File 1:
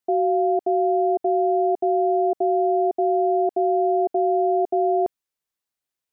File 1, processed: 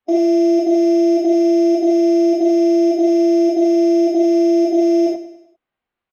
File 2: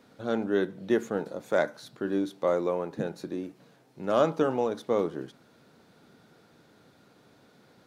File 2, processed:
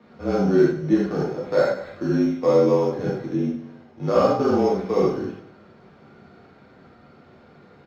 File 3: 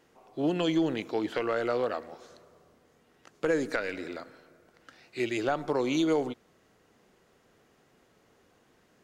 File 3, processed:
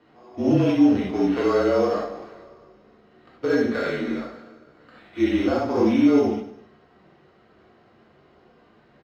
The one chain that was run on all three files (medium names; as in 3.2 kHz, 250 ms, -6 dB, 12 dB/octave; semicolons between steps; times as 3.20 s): block-companded coder 7-bit; high-pass 110 Hz; treble shelf 7.1 kHz -10.5 dB; harmonic-percussive split percussive -9 dB; in parallel at +2 dB: compression, threshold -30 dBFS; on the sum: sample-rate reducer 5.9 kHz, jitter 0%; frequency shift -34 Hz; distance through air 240 m; on a send: feedback delay 100 ms, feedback 46%, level -13.5 dB; on the sum: gated-style reverb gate 110 ms flat, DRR -5.5 dB